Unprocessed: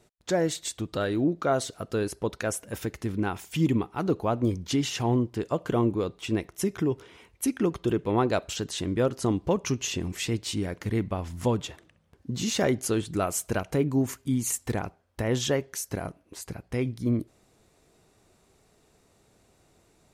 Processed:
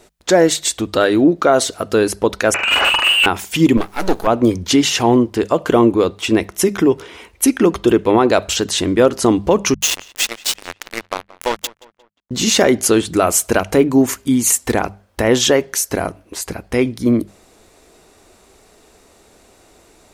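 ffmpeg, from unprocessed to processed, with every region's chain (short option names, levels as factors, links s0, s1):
-filter_complex "[0:a]asettb=1/sr,asplit=3[s0][s1][s2];[s0]atrim=end=2.544[s3];[s1]atrim=start=2.54:end=3.26,asetpts=PTS-STARTPTS,afade=t=in:d=0.004:c=qsin,afade=t=out:st=0.716:d=0.004:c=qsin,lowpass=f=2600:t=q:w=0.5098,lowpass=f=2600:t=q:w=0.6013,lowpass=f=2600:t=q:w=0.9,lowpass=f=2600:t=q:w=2.563,afreqshift=-3000,asplit=2[s4][s5];[s5]highpass=f=720:p=1,volume=50.1,asoftclip=type=tanh:threshold=0.168[s6];[s4][s6]amix=inputs=2:normalize=0,lowpass=f=1100:p=1,volume=0.501,asplit=2[s7][s8];[s8]adelay=46,volume=0.668[s9];[s7][s9]amix=inputs=2:normalize=0,atrim=end_sample=31752[s10];[s2]atrim=start=3.256[s11];[s3][s10]acrossfade=d=0.004:c1=hsin:c2=qsin[s12];[s12][s11]acrossfade=d=0.004:c1=qsin:c2=hsin,asettb=1/sr,asplit=3[s13][s14][s15];[s13]atrim=end=3.774[s16];[s14]atrim=start=3.77:end=4.27,asetpts=PTS-STARTPTS,afade=t=in:d=0.004:c=qsin,afade=t=out:st=0.496:d=0.004:c=qsin,bass=f=250:g=1,treble=f=4000:g=8,aeval=exprs='max(val(0),0)':c=same,acrusher=bits=8:dc=4:mix=0:aa=0.000001[s17];[s15]atrim=start=4.266[s18];[s16][s17]acrossfade=d=0.004:c1=hsin:c2=qsin[s19];[s19][s18]acrossfade=d=0.004:c1=qsin:c2=hsin,asettb=1/sr,asplit=3[s20][s21][s22];[s20]atrim=end=9.744[s23];[s21]atrim=start=9.74:end=12.31,asetpts=PTS-STARTPTS,afade=t=in:d=0.004:c=qsin,afade=t=out:st=2.566:d=0.004:c=qsin,highpass=f=1100:p=1,acrusher=bits=4:mix=0:aa=0.5,asplit=2[s24][s25];[s25]adelay=177,lowpass=f=3400:p=1,volume=0.1,asplit=2[s26][s27];[s27]adelay=177,lowpass=f=3400:p=1,volume=0.45,asplit=2[s28][s29];[s29]adelay=177,lowpass=f=3400:p=1,volume=0.45[s30];[s24][s26][s28][s30]amix=inputs=4:normalize=0,atrim=end_sample=113337[s31];[s22]atrim=start=12.306[s32];[s23][s31]acrossfade=d=0.004:c1=hsin:c2=qsin[s33];[s33][s32]acrossfade=d=0.004:c1=qsin:c2=hsin,equalizer=f=130:t=o:w=1:g=-11.5,bandreject=f=50:t=h:w=6,bandreject=f=100:t=h:w=6,bandreject=f=150:t=h:w=6,bandreject=f=200:t=h:w=6,alimiter=level_in=6.31:limit=0.891:release=50:level=0:latency=1,volume=0.891"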